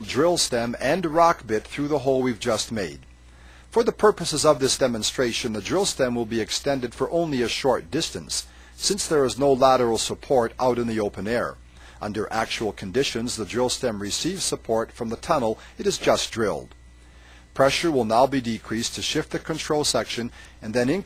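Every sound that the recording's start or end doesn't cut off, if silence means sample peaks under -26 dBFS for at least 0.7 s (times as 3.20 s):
3.76–16.58 s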